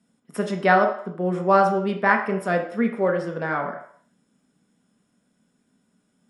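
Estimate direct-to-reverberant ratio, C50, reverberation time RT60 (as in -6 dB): 3.0 dB, 8.0 dB, 0.60 s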